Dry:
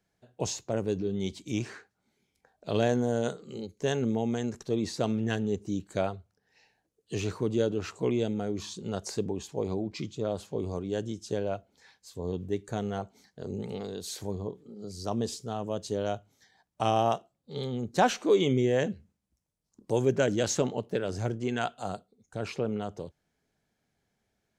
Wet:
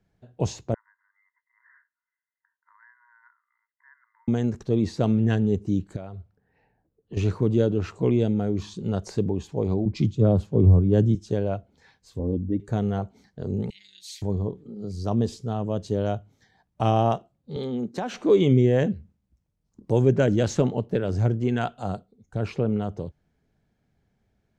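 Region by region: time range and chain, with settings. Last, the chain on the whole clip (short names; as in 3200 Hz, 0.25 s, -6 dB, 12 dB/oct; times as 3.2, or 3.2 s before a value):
0.74–4.28 brick-wall FIR band-pass 920–2100 Hz + bell 1200 Hz -12.5 dB 0.75 oct + compressor 2:1, threshold -60 dBFS
5.96–7.17 low-pass opened by the level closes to 1300 Hz, open at -28.5 dBFS + compressor 3:1, threshold -43 dBFS
9.85–11.15 low shelf 370 Hz +10.5 dB + three-band expander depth 100%
12.19–12.6 formant sharpening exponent 1.5 + air absorption 150 m + comb 3.7 ms, depth 76%
13.7–14.22 elliptic high-pass 2000 Hz + comb 5.8 ms, depth 79%
17.56–18.14 HPF 180 Hz 24 dB/oct + compressor 4:1, threshold -30 dBFS
whole clip: LPF 3000 Hz 6 dB/oct; low shelf 220 Hz +11.5 dB; gain +2 dB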